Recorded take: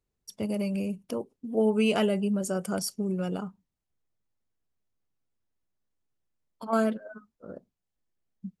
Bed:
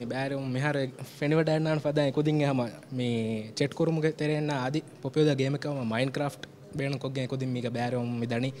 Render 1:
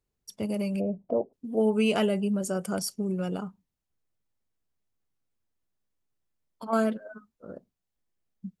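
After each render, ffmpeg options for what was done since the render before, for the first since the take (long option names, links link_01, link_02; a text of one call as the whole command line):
ffmpeg -i in.wav -filter_complex "[0:a]asplit=3[link_01][link_02][link_03];[link_01]afade=type=out:start_time=0.79:duration=0.02[link_04];[link_02]lowpass=frequency=670:width_type=q:width=5.5,afade=type=in:start_time=0.79:duration=0.02,afade=type=out:start_time=1.32:duration=0.02[link_05];[link_03]afade=type=in:start_time=1.32:duration=0.02[link_06];[link_04][link_05][link_06]amix=inputs=3:normalize=0" out.wav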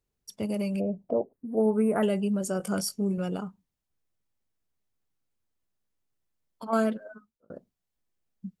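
ffmpeg -i in.wav -filter_complex "[0:a]asettb=1/sr,asplit=3[link_01][link_02][link_03];[link_01]atrim=end=1.134[link_04];[link_02]atrim=start=1.13:end=2.03,asetpts=PTS-STARTPTS,afade=type=in:duration=0.004:curve=qsin,afade=type=out:start_time=0.896:duration=0.004:curve=qsin,asuperstop=centerf=4400:order=12:qfactor=0.65[link_05];[link_03]atrim=start=2.026[link_06];[link_04][link_05]acrossfade=duration=0.004:curve1=hsin:curve2=qsin[link_07];[link_07][link_06]acrossfade=duration=0.004:curve1=qsin:curve2=hsin,asettb=1/sr,asplit=3[link_08][link_09][link_10];[link_08]atrim=end=2.584[link_11];[link_09]atrim=start=2.58:end=3.18,asetpts=PTS-STARTPTS,afade=type=in:duration=0.004:curve=qsin,afade=type=out:start_time=0.596:duration=0.004:curve=qsin,asplit=2[link_12][link_13];[link_13]adelay=20,volume=-6.5dB[link_14];[link_12][link_14]amix=inputs=2:normalize=0,atrim=end_sample=26460[link_15];[link_10]atrim=start=3.176[link_16];[link_11][link_15]acrossfade=duration=0.004:curve1=hsin:curve2=qsin[link_17];[link_17][link_16]acrossfade=duration=0.004:curve1=qsin:curve2=hsin,asplit=2[link_18][link_19];[link_18]atrim=end=7.5,asetpts=PTS-STARTPTS,afade=type=out:start_time=7.03:duration=0.47[link_20];[link_19]atrim=start=7.5,asetpts=PTS-STARTPTS,afade=type=in:duration=0.004:curve=hsin[link_21];[link_20][link_21]concat=n=2:v=0:a=1" out.wav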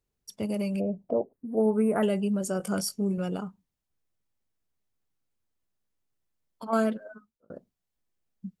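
ffmpeg -i in.wav -af anull out.wav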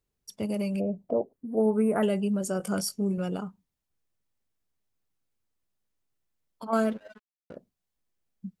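ffmpeg -i in.wav -filter_complex "[0:a]asettb=1/sr,asplit=3[link_01][link_02][link_03];[link_01]atrim=end=6.754[link_04];[link_02]atrim=start=6.75:end=7.56,asetpts=PTS-STARTPTS,afade=type=in:duration=0.004:curve=qsin,afade=type=out:start_time=0.806:duration=0.004:curve=qsin,aeval=exprs='sgn(val(0))*max(abs(val(0))-0.00316,0)':channel_layout=same[link_05];[link_03]atrim=start=7.556[link_06];[link_04][link_05]acrossfade=duration=0.004:curve1=hsin:curve2=qsin[link_07];[link_07][link_06]acrossfade=duration=0.004:curve1=qsin:curve2=hsin" out.wav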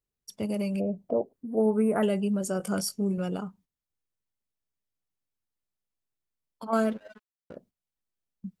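ffmpeg -i in.wav -af "agate=range=-8dB:threshold=-57dB:ratio=16:detection=peak" out.wav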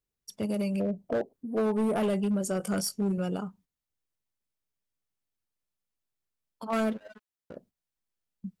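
ffmpeg -i in.wav -af "asoftclip=type=hard:threshold=-23dB" out.wav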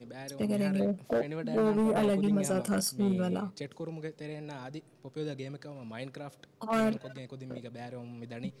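ffmpeg -i in.wav -i bed.wav -filter_complex "[1:a]volume=-13dB[link_01];[0:a][link_01]amix=inputs=2:normalize=0" out.wav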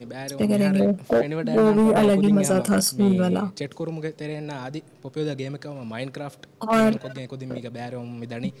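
ffmpeg -i in.wav -af "volume=9.5dB" out.wav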